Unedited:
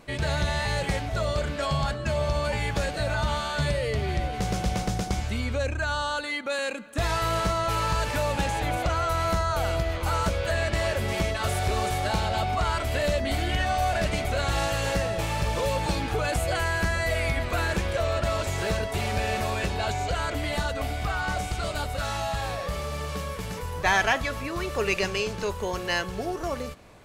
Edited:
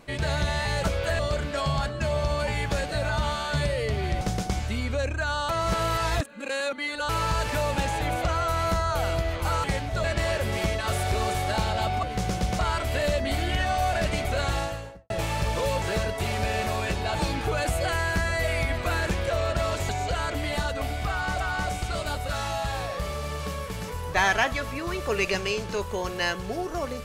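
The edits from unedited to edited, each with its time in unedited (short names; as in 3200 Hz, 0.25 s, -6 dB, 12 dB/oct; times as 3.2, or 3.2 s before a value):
0.84–1.24 swap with 10.25–10.6
4.26–4.82 move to 12.59
6.1–7.7 reverse
14.42–15.1 studio fade out
18.56–19.89 move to 15.82
21.09–21.4 loop, 2 plays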